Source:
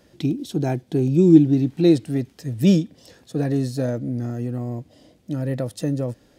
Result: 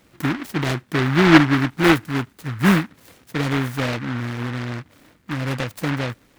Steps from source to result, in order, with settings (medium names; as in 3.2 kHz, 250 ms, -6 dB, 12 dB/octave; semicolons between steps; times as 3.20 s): delay time shaken by noise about 1.4 kHz, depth 0.28 ms